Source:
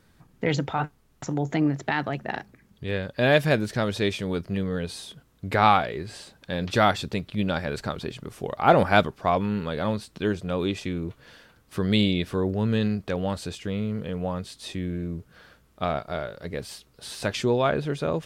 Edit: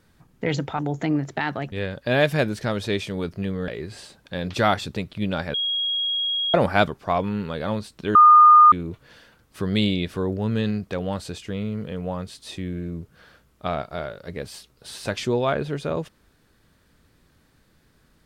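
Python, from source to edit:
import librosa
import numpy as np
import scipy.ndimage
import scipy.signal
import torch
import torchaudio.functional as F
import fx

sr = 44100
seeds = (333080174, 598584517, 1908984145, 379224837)

y = fx.edit(x, sr, fx.cut(start_s=0.79, length_s=0.51),
    fx.cut(start_s=2.23, length_s=0.61),
    fx.cut(start_s=4.8, length_s=1.05),
    fx.bleep(start_s=7.71, length_s=1.0, hz=3290.0, db=-21.5),
    fx.bleep(start_s=10.32, length_s=0.57, hz=1220.0, db=-7.5), tone=tone)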